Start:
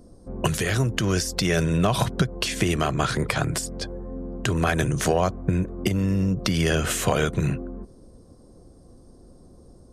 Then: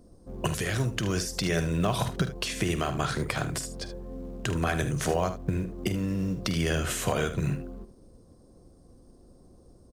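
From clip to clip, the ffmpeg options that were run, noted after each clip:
ffmpeg -i in.wav -filter_complex "[0:a]asplit=2[link_01][link_02];[link_02]acrusher=bits=5:mode=log:mix=0:aa=0.000001,volume=-8dB[link_03];[link_01][link_03]amix=inputs=2:normalize=0,aecho=1:1:48|76:0.211|0.251,volume=-8.5dB" out.wav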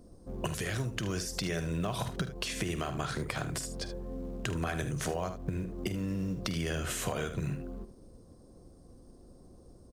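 ffmpeg -i in.wav -af "acompressor=threshold=-33dB:ratio=2.5" out.wav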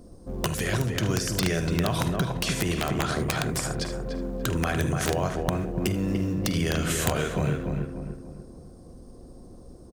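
ffmpeg -i in.wav -filter_complex "[0:a]asplit=2[link_01][link_02];[link_02]adelay=292,lowpass=frequency=1700:poles=1,volume=-3.5dB,asplit=2[link_03][link_04];[link_04]adelay=292,lowpass=frequency=1700:poles=1,volume=0.42,asplit=2[link_05][link_06];[link_06]adelay=292,lowpass=frequency=1700:poles=1,volume=0.42,asplit=2[link_07][link_08];[link_08]adelay=292,lowpass=frequency=1700:poles=1,volume=0.42,asplit=2[link_09][link_10];[link_10]adelay=292,lowpass=frequency=1700:poles=1,volume=0.42[link_11];[link_01][link_03][link_05][link_07][link_09][link_11]amix=inputs=6:normalize=0,aeval=exprs='(mod(11.2*val(0)+1,2)-1)/11.2':channel_layout=same,volume=6.5dB" out.wav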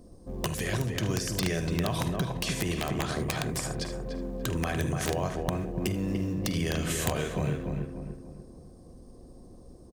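ffmpeg -i in.wav -af "bandreject=frequency=1400:width=7.9,volume=-3.5dB" out.wav

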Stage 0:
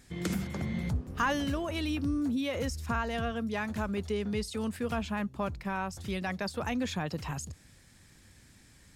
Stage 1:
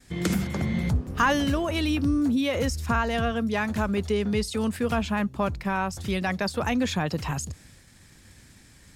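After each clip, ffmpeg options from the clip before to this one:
ffmpeg -i in.wav -af "agate=range=-33dB:threshold=-55dB:ratio=3:detection=peak,volume=7dB" out.wav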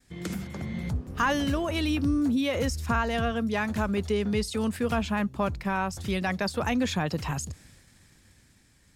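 ffmpeg -i in.wav -af "dynaudnorm=framelen=130:gausssize=17:maxgain=7.5dB,volume=-8.5dB" out.wav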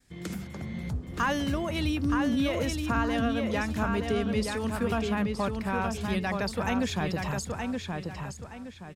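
ffmpeg -i in.wav -filter_complex "[0:a]asplit=2[link_01][link_02];[link_02]adelay=922,lowpass=frequency=4800:poles=1,volume=-4dB,asplit=2[link_03][link_04];[link_04]adelay=922,lowpass=frequency=4800:poles=1,volume=0.33,asplit=2[link_05][link_06];[link_06]adelay=922,lowpass=frequency=4800:poles=1,volume=0.33,asplit=2[link_07][link_08];[link_08]adelay=922,lowpass=frequency=4800:poles=1,volume=0.33[link_09];[link_01][link_03][link_05][link_07][link_09]amix=inputs=5:normalize=0,volume=-2.5dB" out.wav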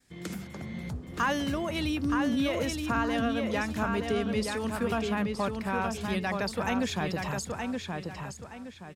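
ffmpeg -i in.wav -af "lowshelf=frequency=95:gain=-9" out.wav

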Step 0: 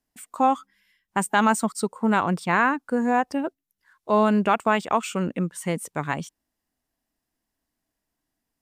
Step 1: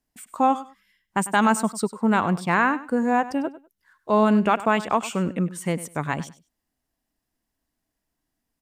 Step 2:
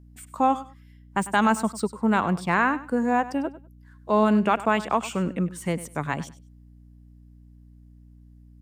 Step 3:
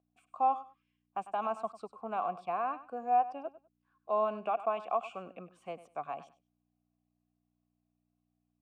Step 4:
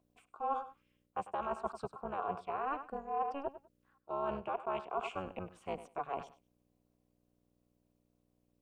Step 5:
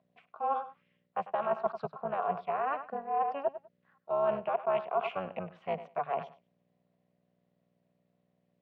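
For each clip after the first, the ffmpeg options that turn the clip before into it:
ffmpeg -i in.wav -af "lowshelf=frequency=160:gain=4,aecho=1:1:99|198:0.158|0.0301" out.wav
ffmpeg -i in.wav -filter_complex "[0:a]acrossover=split=420|5400[link_01][link_02][link_03];[link_03]asoftclip=type=tanh:threshold=-32.5dB[link_04];[link_01][link_02][link_04]amix=inputs=3:normalize=0,aeval=exprs='val(0)+0.00447*(sin(2*PI*60*n/s)+sin(2*PI*2*60*n/s)/2+sin(2*PI*3*60*n/s)/3+sin(2*PI*4*60*n/s)/4+sin(2*PI*5*60*n/s)/5)':channel_layout=same,volume=-1.5dB" out.wav
ffmpeg -i in.wav -filter_complex "[0:a]acrossover=split=970[link_01][link_02];[link_02]alimiter=limit=-21dB:level=0:latency=1:release=28[link_03];[link_01][link_03]amix=inputs=2:normalize=0,asplit=3[link_04][link_05][link_06];[link_04]bandpass=frequency=730:width_type=q:width=8,volume=0dB[link_07];[link_05]bandpass=frequency=1090:width_type=q:width=8,volume=-6dB[link_08];[link_06]bandpass=frequency=2440:width_type=q:width=8,volume=-9dB[link_09];[link_07][link_08][link_09]amix=inputs=3:normalize=0" out.wav
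ffmpeg -i in.wav -af "areverse,acompressor=threshold=-38dB:ratio=8,areverse,tremolo=f=280:d=0.889,volume=8dB" out.wav
ffmpeg -i in.wav -af "highpass=160,equalizer=frequency=160:width_type=q:width=4:gain=10,equalizer=frequency=310:width_type=q:width=4:gain=-10,equalizer=frequency=640:width_type=q:width=4:gain=8,equalizer=frequency=1900:width_type=q:width=4:gain=8,lowpass=frequency=4000:width=0.5412,lowpass=frequency=4000:width=1.3066,volume=2.5dB" out.wav

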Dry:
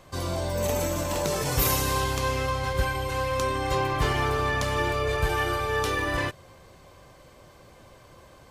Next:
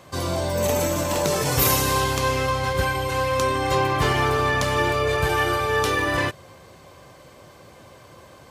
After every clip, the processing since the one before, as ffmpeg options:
ffmpeg -i in.wav -af "highpass=82,volume=5dB" out.wav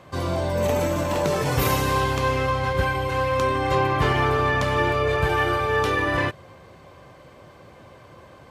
ffmpeg -i in.wav -af "bass=frequency=250:gain=1,treble=frequency=4000:gain=-10" out.wav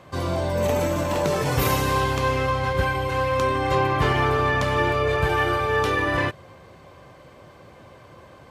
ffmpeg -i in.wav -af anull out.wav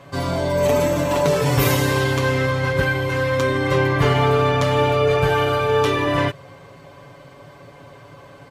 ffmpeg -i in.wav -af "aecho=1:1:7.1:0.77,volume=2dB" out.wav

